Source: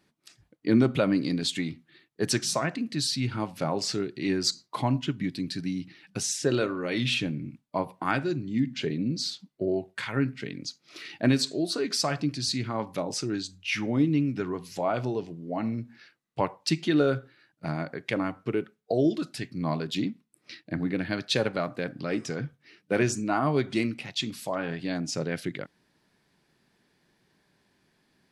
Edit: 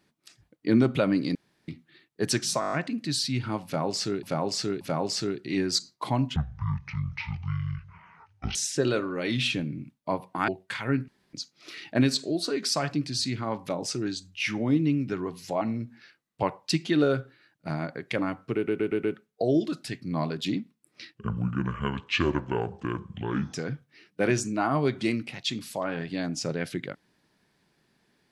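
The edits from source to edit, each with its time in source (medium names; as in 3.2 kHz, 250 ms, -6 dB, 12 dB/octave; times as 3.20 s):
1.35–1.68 s: room tone
2.60 s: stutter 0.02 s, 7 plays
3.53–4.11 s: loop, 3 plays
5.08–6.22 s: speed 52%
8.15–9.76 s: delete
10.36–10.61 s: room tone
14.89–15.59 s: delete
18.53 s: stutter 0.12 s, 5 plays
20.66–22.25 s: speed 67%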